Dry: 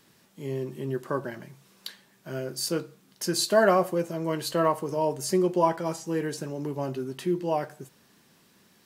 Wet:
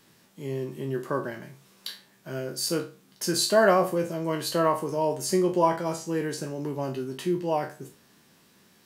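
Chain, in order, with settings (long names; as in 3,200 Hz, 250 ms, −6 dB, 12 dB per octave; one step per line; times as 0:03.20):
peak hold with a decay on every bin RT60 0.33 s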